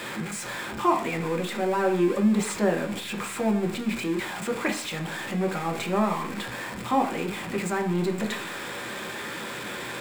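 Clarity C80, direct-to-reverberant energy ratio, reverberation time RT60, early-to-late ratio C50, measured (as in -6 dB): 15.5 dB, 3.5 dB, 0.50 s, 11.5 dB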